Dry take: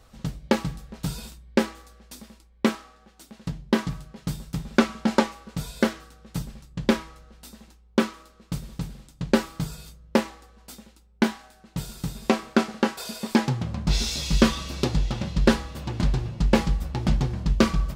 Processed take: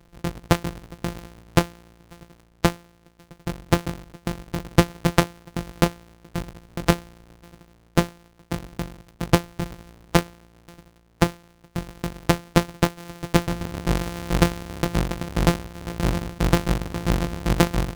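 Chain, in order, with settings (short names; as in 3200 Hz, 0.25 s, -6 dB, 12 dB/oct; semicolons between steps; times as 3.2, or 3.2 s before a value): sample sorter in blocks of 256 samples; harmonic-percussive split percussive +8 dB; Doppler distortion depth 0.1 ms; gain -4 dB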